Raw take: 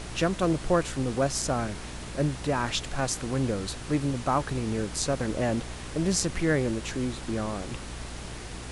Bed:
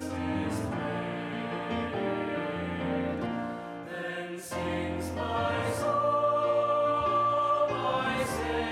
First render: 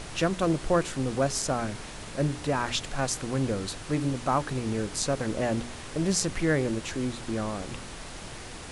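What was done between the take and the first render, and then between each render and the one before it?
hum removal 60 Hz, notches 7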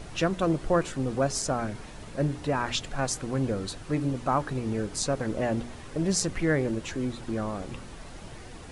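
broadband denoise 8 dB, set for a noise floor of −41 dBFS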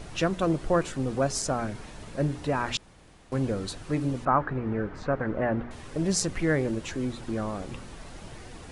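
0:02.77–0:03.32: fill with room tone
0:04.25–0:05.71: low-pass with resonance 1,600 Hz, resonance Q 1.7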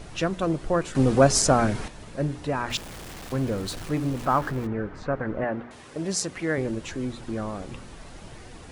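0:00.95–0:01.88: clip gain +9 dB
0:02.70–0:04.67: converter with a step at zero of −35 dBFS
0:05.44–0:06.58: high-pass filter 240 Hz 6 dB per octave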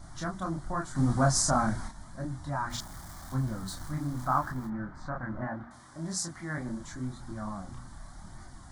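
phaser with its sweep stopped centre 1,100 Hz, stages 4
multi-voice chorus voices 2, 0.89 Hz, delay 28 ms, depth 5 ms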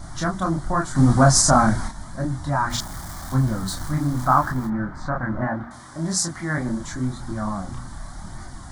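level +10.5 dB
brickwall limiter −3 dBFS, peak gain reduction 2.5 dB

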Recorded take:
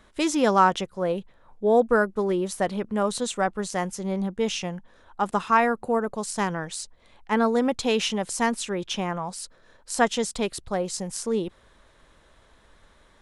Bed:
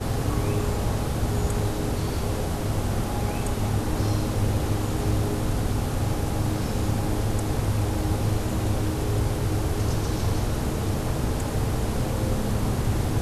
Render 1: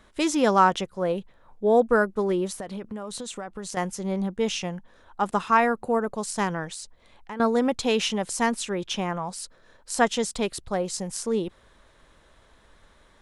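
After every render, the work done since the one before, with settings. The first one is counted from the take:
0:02.50–0:03.77: downward compressor 16 to 1, threshold −30 dBFS
0:06.71–0:07.40: downward compressor, threshold −33 dBFS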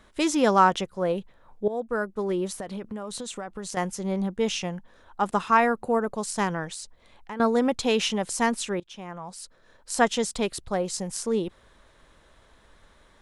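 0:01.68–0:02.58: fade in, from −15.5 dB
0:08.80–0:09.94: fade in, from −20.5 dB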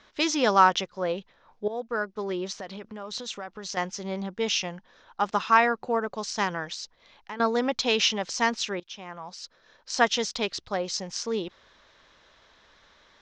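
Butterworth low-pass 6,100 Hz 48 dB per octave
spectral tilt +2.5 dB per octave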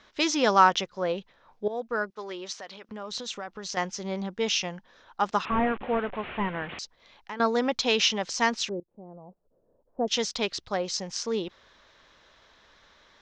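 0:02.10–0:02.89: high-pass filter 810 Hz 6 dB per octave
0:05.45–0:06.79: linear delta modulator 16 kbit/s, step −33 dBFS
0:08.69–0:10.08: inverse Chebyshev low-pass filter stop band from 3,500 Hz, stop band 80 dB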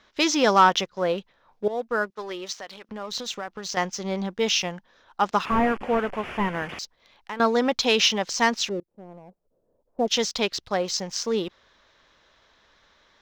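leveller curve on the samples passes 1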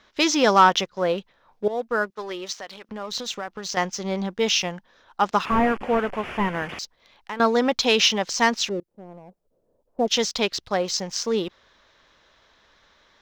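level +1.5 dB

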